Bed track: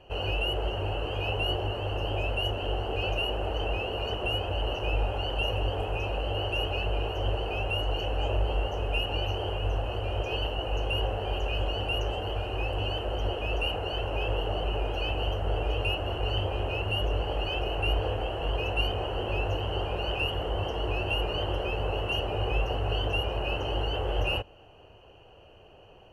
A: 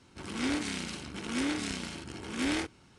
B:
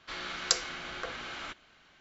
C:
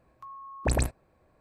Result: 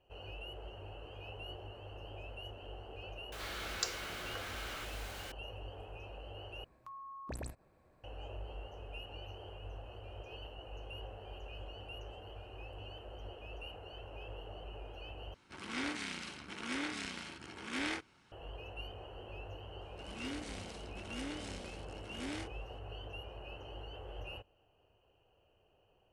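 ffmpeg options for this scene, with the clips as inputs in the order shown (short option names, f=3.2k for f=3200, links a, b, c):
-filter_complex "[1:a]asplit=2[a][b];[0:a]volume=-18dB[c];[2:a]aeval=exprs='val(0)+0.5*0.0237*sgn(val(0))':c=same[d];[3:a]acompressor=threshold=-45dB:ratio=2.5:attack=5.2:release=148:knee=1:detection=peak[e];[a]equalizer=f=1.7k:w=0.35:g=9[f];[c]asplit=3[g][h][i];[g]atrim=end=6.644[j];[e]atrim=end=1.4,asetpts=PTS-STARTPTS,volume=-2.5dB[k];[h]atrim=start=8.036:end=15.344[l];[f]atrim=end=2.98,asetpts=PTS-STARTPTS,volume=-11.5dB[m];[i]atrim=start=18.316[n];[d]atrim=end=2,asetpts=PTS-STARTPTS,volume=-10.5dB,afade=t=in:d=0.004:c=hsin,afade=t=out:st=1.996:d=0.004:c=hsin,adelay=3320[o];[b]atrim=end=2.98,asetpts=PTS-STARTPTS,volume=-12dB,afade=t=in:d=0.004:c=hsin,afade=t=out:st=2.976:d=0.004:c=hsin,adelay=19810[p];[j][k]acrossfade=d=0.004:c1=hsin:c2=hsin[q];[q][l]acrossfade=d=0.004:c1=hsin:c2=hsin[r];[r][m]acrossfade=d=0.004:c1=hsin:c2=hsin[s];[s][n]acrossfade=d=0.004:c1=hsin:c2=hsin[t];[t][o][p]amix=inputs=3:normalize=0"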